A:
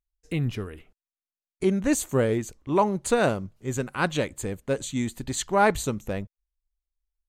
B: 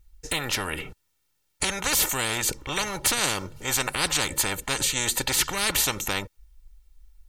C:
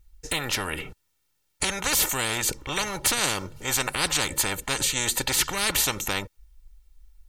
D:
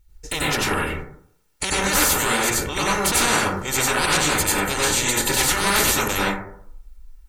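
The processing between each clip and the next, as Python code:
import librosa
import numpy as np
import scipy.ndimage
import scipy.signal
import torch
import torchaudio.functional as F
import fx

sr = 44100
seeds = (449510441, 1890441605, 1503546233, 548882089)

y1 = fx.low_shelf_res(x, sr, hz=310.0, db=7.5, q=1.5)
y1 = y1 + 0.73 * np.pad(y1, (int(2.2 * sr / 1000.0), 0))[:len(y1)]
y1 = fx.spectral_comp(y1, sr, ratio=10.0)
y2 = y1
y3 = fx.rev_plate(y2, sr, seeds[0], rt60_s=0.64, hf_ratio=0.3, predelay_ms=80, drr_db=-7.0)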